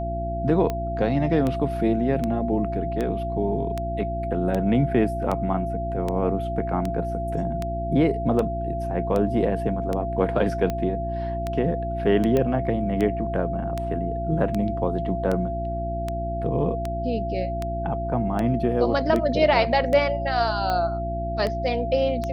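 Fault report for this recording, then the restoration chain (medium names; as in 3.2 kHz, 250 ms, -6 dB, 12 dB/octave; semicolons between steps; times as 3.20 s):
hum 60 Hz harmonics 6 -30 dBFS
tick 78 rpm -14 dBFS
whine 680 Hz -28 dBFS
12.37 s: pop -12 dBFS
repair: de-click; de-hum 60 Hz, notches 6; band-stop 680 Hz, Q 30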